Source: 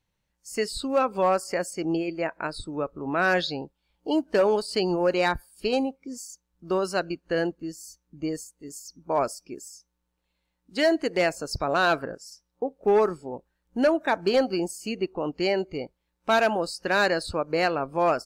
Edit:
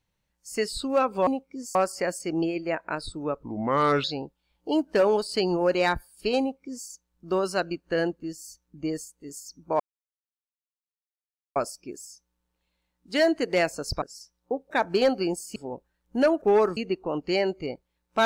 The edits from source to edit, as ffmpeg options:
-filter_complex "[0:a]asplit=11[a][b][c][d][e][f][g][h][i][j][k];[a]atrim=end=1.272[l];[b]atrim=start=5.788:end=6.272[m];[c]atrim=start=1.268:end=2.954[n];[d]atrim=start=2.95:end=3.43,asetpts=PTS-STARTPTS,asetrate=34839,aresample=44100[o];[e]atrim=start=3.426:end=9.19,asetpts=PTS-STARTPTS,afade=t=out:st=5.76:d=0.004:c=hsin,apad=pad_dur=1.76[p];[f]atrim=start=9.19:end=11.652,asetpts=PTS-STARTPTS,afade=t=in:d=0.004:c=hsin[q];[g]atrim=start=12.128:end=12.822[r];[h]atrim=start=14.028:end=14.882[s];[i]atrim=start=13.168:end=14.032[t];[j]atrim=start=12.818:end=13.172[u];[k]atrim=start=14.878[v];[l][m]acrossfade=d=0.004:c1=hsin:c2=hsin[w];[w][n]acrossfade=d=0.004:c1=hsin:c2=hsin[x];[x][o]acrossfade=d=0.004:c1=hsin:c2=hsin[y];[p][q]concat=n=2:v=0:a=1[z];[y][z]acrossfade=d=0.004:c1=hsin:c2=hsin[aa];[aa][r]acrossfade=d=0.004:c1=hsin:c2=hsin[ab];[ab][s]acrossfade=d=0.004:c1=hsin:c2=hsin[ac];[ac][t]acrossfade=d=0.004:c1=hsin:c2=hsin[ad];[ad][u]acrossfade=d=0.004:c1=hsin:c2=hsin[ae];[ae][v]acrossfade=d=0.004:c1=hsin:c2=hsin"

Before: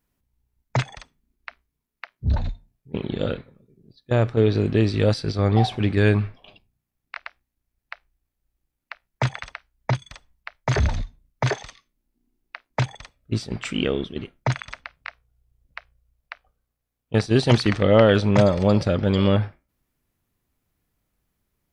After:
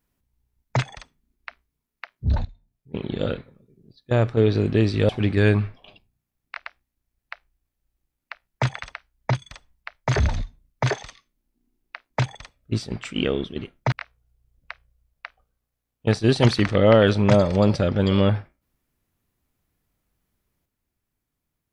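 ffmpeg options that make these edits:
-filter_complex "[0:a]asplit=5[a][b][c][d][e];[a]atrim=end=2.45,asetpts=PTS-STARTPTS,afade=t=out:st=2.446:d=0.004:c=hsin:silence=0.0707946[f];[b]atrim=start=2.45:end=5.092,asetpts=PTS-STARTPTS,afade=t=in:d=0.9:c=qsin:silence=0.0707946[g];[c]atrim=start=5.688:end=13.76,asetpts=PTS-STARTPTS,afade=t=out:st=7.812:d=0.26:silence=0.398107[h];[d]atrim=start=13.76:end=14.522,asetpts=PTS-STARTPTS,afade=t=in:d=0.004:c=hsin:silence=0.398107[i];[e]atrim=start=14.988[j];[f][g]concat=n=2:v=0:a=1[k];[h][i]concat=n=2:v=0:a=1[l];[k][l]acrossfade=d=0.004:c1=hsin:c2=hsin[m];[m][j]acrossfade=d=0.004:c1=hsin:c2=hsin"

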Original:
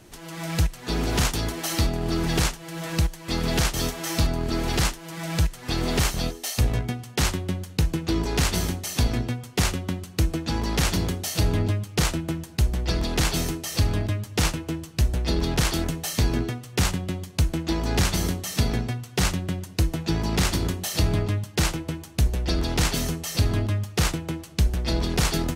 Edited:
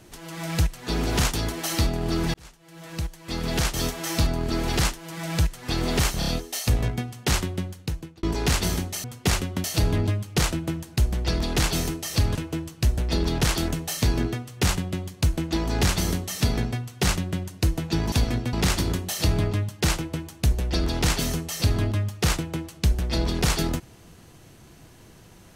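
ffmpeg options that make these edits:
-filter_complex "[0:a]asplit=11[a][b][c][d][e][f][g][h][i][j][k];[a]atrim=end=2.34,asetpts=PTS-STARTPTS,afade=t=out:st=2.336:d=0.004:c=hsin[l];[b]atrim=start=2.34:end=6.222,asetpts=PTS-STARTPTS,afade=t=in:d=1.53[m];[c]atrim=start=6.188:end=6.222[n];[d]atrim=start=6.188:end=6.222[o];[e]atrim=start=6.188:end=8.14,asetpts=PTS-STARTPTS,afade=t=out:st=1.212:d=0.74[p];[f]atrim=start=8.14:end=8.952,asetpts=PTS-STARTPTS,afade=t=in:d=0.004:c=hsin[q];[g]atrim=start=9.358:end=9.962[r];[h]atrim=start=11.248:end=13.962[s];[i]atrim=start=14.508:end=20.282[t];[j]atrim=start=8.948:end=9.362[u];[k]atrim=start=20.278[v];[l][m]concat=n=2:v=0:a=1[w];[w][n]acrossfade=d=0.004:c1=hsin:c2=hsin[x];[x][o]acrossfade=d=0.004:c1=hsin:c2=hsin[y];[p][q]concat=n=2:v=0:a=1[z];[y][z]acrossfade=d=0.004:c1=hsin:c2=hsin[aa];[aa][r]acrossfade=d=0.004:c1=hsin:c2=hsin[ab];[ab][s]acrossfade=d=0.004:c1=hsin:c2=hsin[ac];[ac][t]acrossfade=d=0.004:c1=hsin:c2=hsin[ad];[ad][u]acrossfade=d=0.004:c1=hsin:c2=hsin[ae];[ae][v]acrossfade=d=0.004:c1=hsin:c2=hsin"

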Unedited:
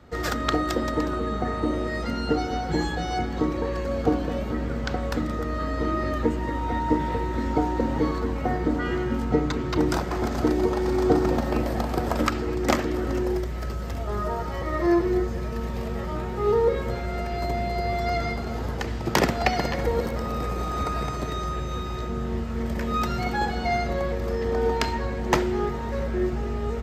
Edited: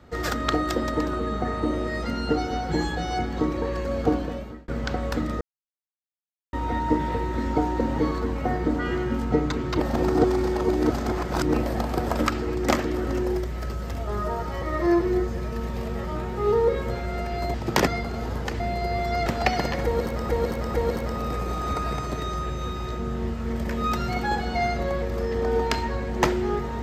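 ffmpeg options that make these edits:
-filter_complex "[0:a]asplit=12[a][b][c][d][e][f][g][h][i][j][k][l];[a]atrim=end=4.68,asetpts=PTS-STARTPTS,afade=t=out:st=4.15:d=0.53[m];[b]atrim=start=4.68:end=5.41,asetpts=PTS-STARTPTS,afade=t=in:d=0.004:c=hsin,afade=t=out:st=0.726:d=0.004:c=hsin[n];[c]atrim=start=5.41:end=6.53,asetpts=PTS-STARTPTS,volume=0[o];[d]atrim=start=6.53:end=9.802,asetpts=PTS-STARTPTS,afade=t=in:d=0.004:c=hsin[p];[e]atrim=start=9.798:end=11.542,asetpts=PTS-STARTPTS,areverse[q];[f]atrim=start=11.538:end=17.542[r];[g]atrim=start=18.928:end=19.262[s];[h]atrim=start=18.198:end=18.932[t];[i]atrim=start=17.538:end=18.202[u];[j]atrim=start=19.258:end=20.292[v];[k]atrim=start=19.838:end=20.292[w];[l]atrim=start=19.838[x];[m][n][o][p]concat=n=4:v=0:a=1[y];[y][q]acrossfade=d=0.004:c1=hsin:c2=hsin[z];[z][r]acrossfade=d=0.004:c1=hsin:c2=hsin[aa];[aa][s]acrossfade=d=0.004:c1=hsin:c2=hsin[ab];[ab][t]acrossfade=d=0.004:c1=hsin:c2=hsin[ac];[ac][u]acrossfade=d=0.004:c1=hsin:c2=hsin[ad];[ad][v]acrossfade=d=0.004:c1=hsin:c2=hsin[ae];[ae][w]acrossfade=d=0.004:c1=hsin:c2=hsin[af];[af][x]acrossfade=d=0.004:c1=hsin:c2=hsin"

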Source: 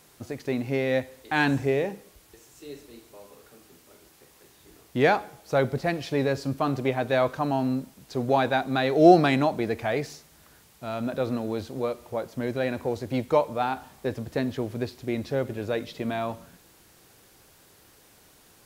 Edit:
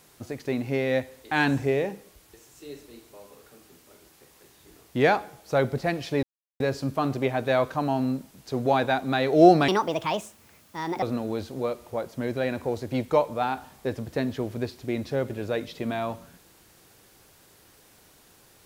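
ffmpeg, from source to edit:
-filter_complex "[0:a]asplit=4[a][b][c][d];[a]atrim=end=6.23,asetpts=PTS-STARTPTS,afade=t=out:st=6.226:d=0.004:c=hsin,apad=pad_dur=0.37[e];[b]atrim=start=6.23:end=9.314,asetpts=PTS-STARTPTS,afade=t=in:d=0.004:c=hsin[f];[c]atrim=start=9.31:end=11.22,asetpts=PTS-STARTPTS,asetrate=62622,aresample=44100[g];[d]atrim=start=11.216[h];[e][f]concat=n=2:v=0:a=1[i];[i][g]acrossfade=d=0.004:c1=hsin:c2=hsin[j];[j][h]acrossfade=d=0.004:c1=hsin:c2=hsin"

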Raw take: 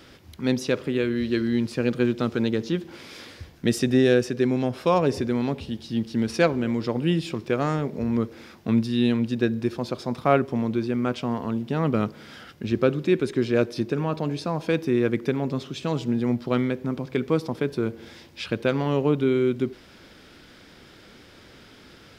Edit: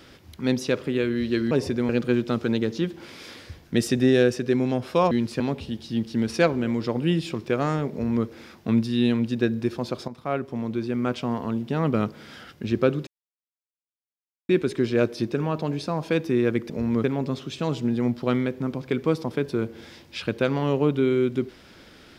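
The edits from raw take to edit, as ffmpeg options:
-filter_complex "[0:a]asplit=9[a][b][c][d][e][f][g][h][i];[a]atrim=end=1.512[j];[b]atrim=start=5.018:end=5.402[k];[c]atrim=start=1.798:end=5.022[l];[d]atrim=start=1.508:end=1.802[m];[e]atrim=start=5.398:end=10.08,asetpts=PTS-STARTPTS,afade=t=out:st=4.678:d=0.004:c=hsin:silence=0.223872[n];[f]atrim=start=10.08:end=13.07,asetpts=PTS-STARTPTS,afade=t=in:d=1.02:silence=0.223872,afade=t=out:st=2.986:d=0.004:c=hsin,apad=pad_dur=1.42[o];[g]atrim=start=13.07:end=15.282,asetpts=PTS-STARTPTS,afade=t=in:d=0.004:c=hsin[p];[h]atrim=start=7.918:end=8.262[q];[i]atrim=start=15.278[r];[j][k]acrossfade=d=0.004:c1=hsin:c2=hsin[s];[s][l]acrossfade=d=0.004:c1=hsin:c2=hsin[t];[t][m]acrossfade=d=0.004:c1=hsin:c2=hsin[u];[n][o][p]concat=n=3:v=0:a=1[v];[u][v]acrossfade=d=0.004:c1=hsin:c2=hsin[w];[w][q]acrossfade=d=0.004:c1=hsin:c2=hsin[x];[x][r]acrossfade=d=0.004:c1=hsin:c2=hsin"

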